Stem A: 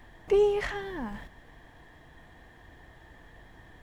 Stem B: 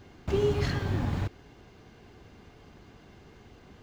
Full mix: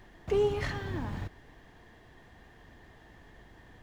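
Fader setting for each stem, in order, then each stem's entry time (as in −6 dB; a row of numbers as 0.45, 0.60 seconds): −3.5, −8.0 decibels; 0.00, 0.00 seconds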